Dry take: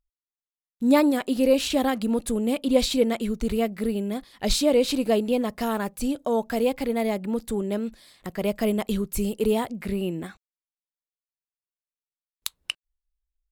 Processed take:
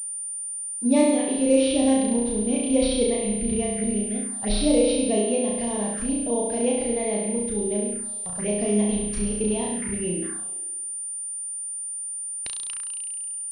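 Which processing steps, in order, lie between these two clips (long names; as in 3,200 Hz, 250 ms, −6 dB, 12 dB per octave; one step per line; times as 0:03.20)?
flutter between parallel walls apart 5.8 metres, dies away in 1.1 s
phaser swept by the level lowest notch 170 Hz, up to 1,400 Hz, full sweep at −19.5 dBFS
switching amplifier with a slow clock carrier 9,200 Hz
level −3 dB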